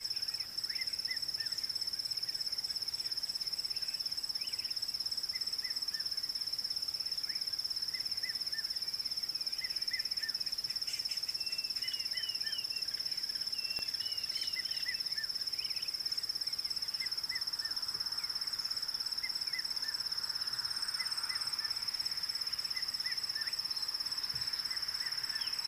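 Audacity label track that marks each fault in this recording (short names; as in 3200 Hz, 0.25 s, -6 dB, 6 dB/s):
13.790000	13.790000	pop -25 dBFS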